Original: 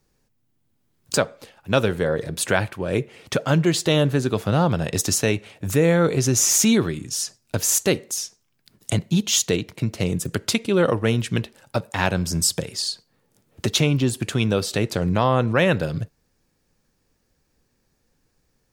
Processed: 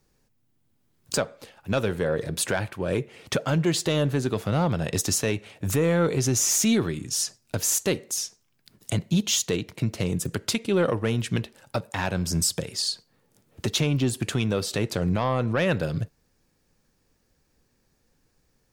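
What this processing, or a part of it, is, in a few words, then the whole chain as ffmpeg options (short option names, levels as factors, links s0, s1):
soft clipper into limiter: -af "asoftclip=type=tanh:threshold=0.355,alimiter=limit=0.188:level=0:latency=1:release=382"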